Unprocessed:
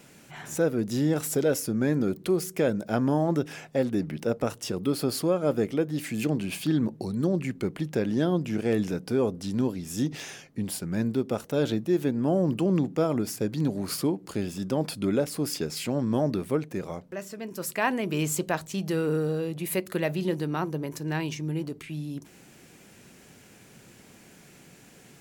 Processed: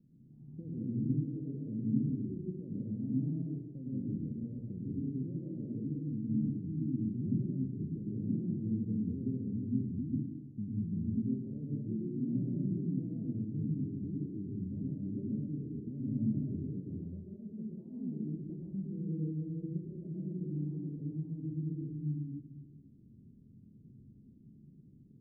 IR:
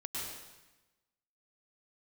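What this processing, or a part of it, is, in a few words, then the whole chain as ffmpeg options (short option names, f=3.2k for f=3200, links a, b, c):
club heard from the street: -filter_complex "[0:a]alimiter=limit=-21dB:level=0:latency=1:release=197,lowpass=f=250:w=0.5412,lowpass=f=250:w=1.3066[a];[1:a]atrim=start_sample=2205[b];[a][b]afir=irnorm=-1:irlink=0,volume=-2.5dB"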